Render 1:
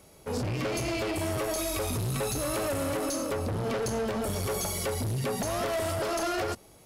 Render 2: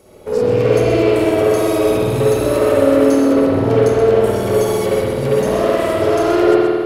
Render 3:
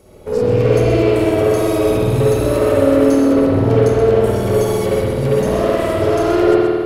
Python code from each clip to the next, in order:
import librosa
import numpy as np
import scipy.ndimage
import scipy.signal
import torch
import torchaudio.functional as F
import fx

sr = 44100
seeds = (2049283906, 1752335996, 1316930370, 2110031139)

y1 = fx.peak_eq(x, sr, hz=430.0, db=11.0, octaves=1.1)
y1 = y1 + 10.0 ** (-8.0 / 20.0) * np.pad(y1, (int(127 * sr / 1000.0), 0))[:len(y1)]
y1 = fx.rev_spring(y1, sr, rt60_s=1.9, pass_ms=(51,), chirp_ms=30, drr_db=-7.5)
y1 = F.gain(torch.from_numpy(y1), 1.5).numpy()
y2 = fx.low_shelf(y1, sr, hz=150.0, db=9.0)
y2 = F.gain(torch.from_numpy(y2), -1.5).numpy()